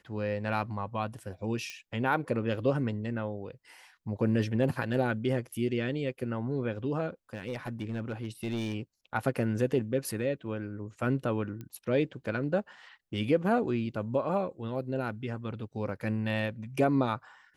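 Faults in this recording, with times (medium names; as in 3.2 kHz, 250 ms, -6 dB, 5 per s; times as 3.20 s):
1.70 s: pop -25 dBFS
7.34–8.75 s: clipped -28 dBFS
11.61 s: pop -28 dBFS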